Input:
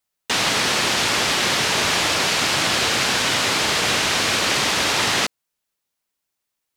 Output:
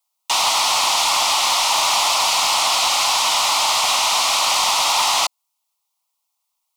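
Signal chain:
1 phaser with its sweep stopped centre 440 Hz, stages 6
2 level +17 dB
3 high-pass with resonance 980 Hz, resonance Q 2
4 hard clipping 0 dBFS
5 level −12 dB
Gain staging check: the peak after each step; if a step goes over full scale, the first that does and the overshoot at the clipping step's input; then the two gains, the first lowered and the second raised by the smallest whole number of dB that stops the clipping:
−10.0, +7.0, +8.0, 0.0, −12.0 dBFS
step 2, 8.0 dB
step 2 +9 dB, step 5 −4 dB

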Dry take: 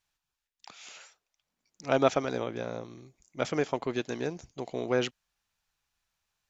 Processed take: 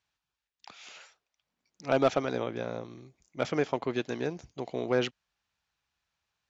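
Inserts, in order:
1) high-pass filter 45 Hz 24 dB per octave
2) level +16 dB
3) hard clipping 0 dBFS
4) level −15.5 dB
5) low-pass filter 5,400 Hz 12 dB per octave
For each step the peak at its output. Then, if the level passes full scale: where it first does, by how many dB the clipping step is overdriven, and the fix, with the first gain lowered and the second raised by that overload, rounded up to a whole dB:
−8.5, +7.5, 0.0, −15.5, −15.0 dBFS
step 2, 7.5 dB
step 2 +8 dB, step 4 −7.5 dB

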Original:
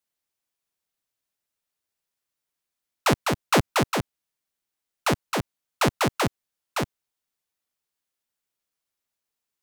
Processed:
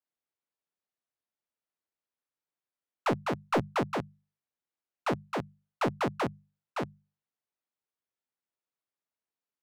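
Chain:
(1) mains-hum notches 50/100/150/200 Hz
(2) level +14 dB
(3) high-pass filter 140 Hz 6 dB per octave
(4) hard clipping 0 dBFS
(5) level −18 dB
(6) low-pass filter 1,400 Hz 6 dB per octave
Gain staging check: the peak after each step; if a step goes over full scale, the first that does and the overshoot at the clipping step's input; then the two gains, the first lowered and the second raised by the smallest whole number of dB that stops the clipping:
−10.5, +3.5, +7.0, 0.0, −18.0, −18.0 dBFS
step 2, 7.0 dB
step 2 +7 dB, step 5 −11 dB

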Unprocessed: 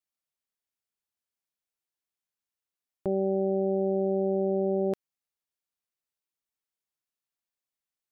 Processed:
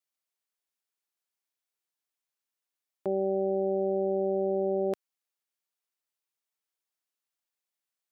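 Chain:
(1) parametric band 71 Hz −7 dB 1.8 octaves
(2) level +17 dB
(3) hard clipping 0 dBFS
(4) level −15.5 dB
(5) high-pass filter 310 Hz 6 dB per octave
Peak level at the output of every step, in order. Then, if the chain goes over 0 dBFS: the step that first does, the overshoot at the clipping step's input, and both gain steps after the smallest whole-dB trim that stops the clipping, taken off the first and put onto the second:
−19.5, −2.5, −2.5, −18.0, −20.0 dBFS
no step passes full scale

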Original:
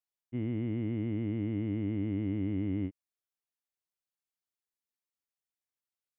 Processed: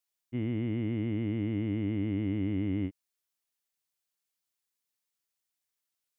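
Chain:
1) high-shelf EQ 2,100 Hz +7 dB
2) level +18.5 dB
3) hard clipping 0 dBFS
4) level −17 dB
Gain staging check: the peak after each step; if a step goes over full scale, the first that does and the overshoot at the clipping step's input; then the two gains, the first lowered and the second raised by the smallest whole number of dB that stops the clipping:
−23.5, −5.0, −5.0, −22.0 dBFS
no step passes full scale

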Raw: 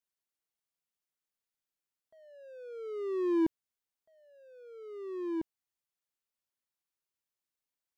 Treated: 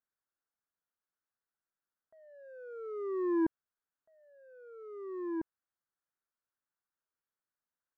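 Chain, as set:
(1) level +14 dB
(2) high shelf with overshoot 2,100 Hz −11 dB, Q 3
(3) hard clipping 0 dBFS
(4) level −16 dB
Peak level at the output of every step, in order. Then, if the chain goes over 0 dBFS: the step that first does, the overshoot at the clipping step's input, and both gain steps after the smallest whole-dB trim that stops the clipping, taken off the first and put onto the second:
−5.5, −5.5, −5.5, −21.5 dBFS
no step passes full scale

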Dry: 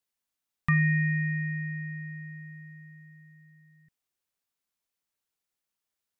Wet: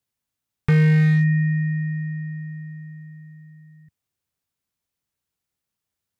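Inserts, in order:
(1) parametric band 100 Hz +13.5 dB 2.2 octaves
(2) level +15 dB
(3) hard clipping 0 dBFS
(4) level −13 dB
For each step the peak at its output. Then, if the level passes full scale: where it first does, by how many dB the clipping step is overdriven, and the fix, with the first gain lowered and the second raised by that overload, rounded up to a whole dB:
−6.5, +8.5, 0.0, −13.0 dBFS
step 2, 8.5 dB
step 2 +6 dB, step 4 −4 dB

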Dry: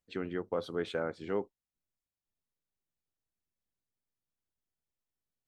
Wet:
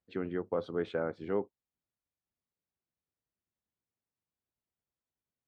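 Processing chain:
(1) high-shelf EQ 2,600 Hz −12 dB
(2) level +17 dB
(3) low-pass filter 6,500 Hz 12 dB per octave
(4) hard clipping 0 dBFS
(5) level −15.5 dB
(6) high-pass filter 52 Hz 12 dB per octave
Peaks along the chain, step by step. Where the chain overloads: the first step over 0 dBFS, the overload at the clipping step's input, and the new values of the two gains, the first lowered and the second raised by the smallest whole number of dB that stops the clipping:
−21.0, −4.0, −4.0, −4.0, −19.5, −20.0 dBFS
no step passes full scale

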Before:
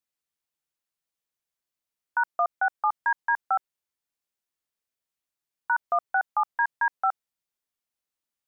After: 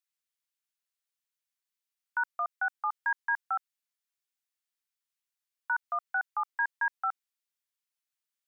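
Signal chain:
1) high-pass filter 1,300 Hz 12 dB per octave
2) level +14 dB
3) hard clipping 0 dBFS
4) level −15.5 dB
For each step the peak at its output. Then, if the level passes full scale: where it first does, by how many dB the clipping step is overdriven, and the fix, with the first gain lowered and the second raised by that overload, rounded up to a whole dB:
−19.5, −5.5, −5.5, −21.0 dBFS
no step passes full scale

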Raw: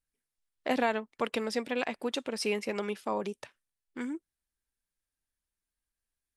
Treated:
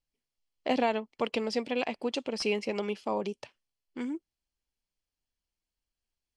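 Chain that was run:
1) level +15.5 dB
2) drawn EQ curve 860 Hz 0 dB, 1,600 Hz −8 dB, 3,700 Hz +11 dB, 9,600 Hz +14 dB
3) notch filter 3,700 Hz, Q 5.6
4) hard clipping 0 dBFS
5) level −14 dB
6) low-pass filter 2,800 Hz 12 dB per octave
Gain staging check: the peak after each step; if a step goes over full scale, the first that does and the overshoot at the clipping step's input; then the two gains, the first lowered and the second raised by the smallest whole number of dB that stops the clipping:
+2.0, +6.5, +6.0, 0.0, −14.0, −14.5 dBFS
step 1, 6.0 dB
step 1 +9.5 dB, step 5 −8 dB

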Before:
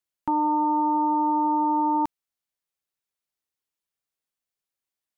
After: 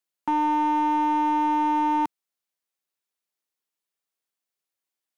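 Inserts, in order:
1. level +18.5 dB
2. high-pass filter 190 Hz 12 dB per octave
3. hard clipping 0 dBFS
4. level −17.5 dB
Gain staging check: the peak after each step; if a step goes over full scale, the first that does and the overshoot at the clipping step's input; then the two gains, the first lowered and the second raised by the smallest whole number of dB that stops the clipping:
+1.5, +3.0, 0.0, −17.5 dBFS
step 1, 3.0 dB
step 1 +15.5 dB, step 4 −14.5 dB

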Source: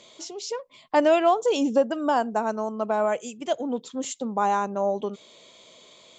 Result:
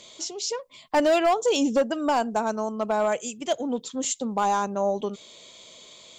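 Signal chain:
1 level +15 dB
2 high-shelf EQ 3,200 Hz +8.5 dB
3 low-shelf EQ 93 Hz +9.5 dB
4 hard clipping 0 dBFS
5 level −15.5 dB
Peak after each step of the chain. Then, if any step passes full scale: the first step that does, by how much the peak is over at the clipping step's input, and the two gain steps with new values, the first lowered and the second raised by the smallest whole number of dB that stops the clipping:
+5.5, +6.5, +6.5, 0.0, −15.5 dBFS
step 1, 6.5 dB
step 1 +8 dB, step 5 −8.5 dB

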